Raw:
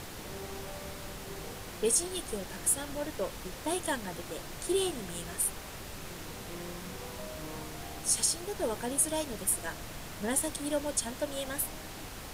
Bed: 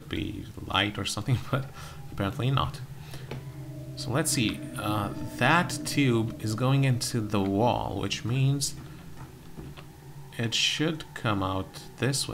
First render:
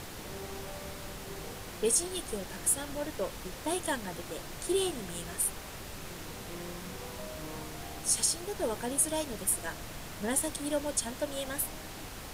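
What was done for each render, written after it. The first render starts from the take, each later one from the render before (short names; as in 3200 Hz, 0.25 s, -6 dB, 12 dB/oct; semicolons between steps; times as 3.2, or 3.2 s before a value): nothing audible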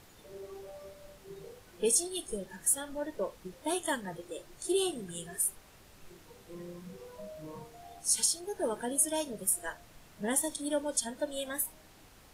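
noise print and reduce 14 dB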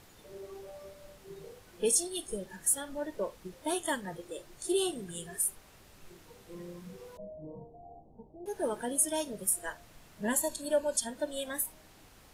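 7.17–8.46 steep low-pass 820 Hz 48 dB/oct; 10.25–10.97 ripple EQ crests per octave 1.4, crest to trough 11 dB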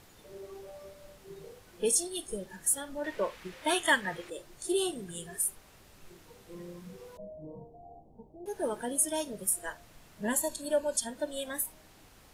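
3.04–4.3 bell 2100 Hz +13 dB 2.2 oct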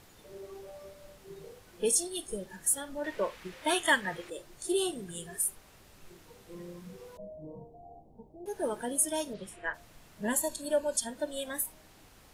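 9.33–9.73 synth low-pass 4600 Hz -> 1900 Hz, resonance Q 2.4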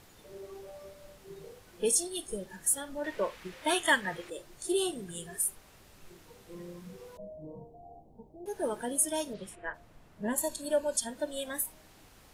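9.55–10.38 high shelf 2200 Hz -11.5 dB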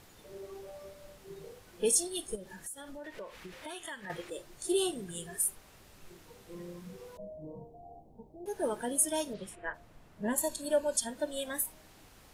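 2.35–4.1 compressor 4:1, threshold -42 dBFS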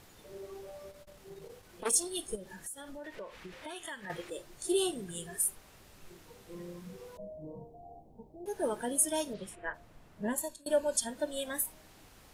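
0.9–2.07 core saturation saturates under 1800 Hz; 3.15–3.76 high shelf 7300 Hz -6.5 dB; 10.23–10.66 fade out, to -24 dB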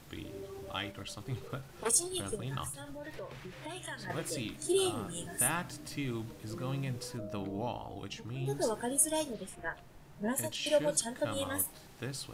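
add bed -13 dB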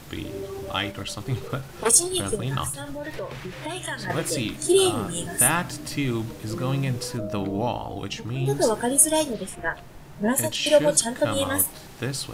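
gain +11 dB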